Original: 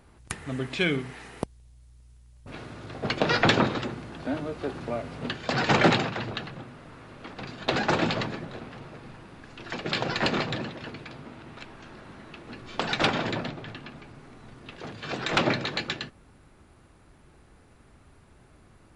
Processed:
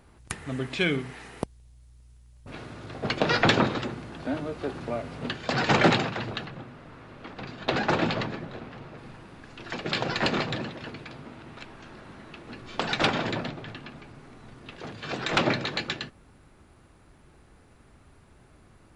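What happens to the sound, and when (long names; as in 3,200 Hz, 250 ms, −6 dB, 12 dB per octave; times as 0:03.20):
0:06.45–0:08.98: high-shelf EQ 7,700 Hz −11 dB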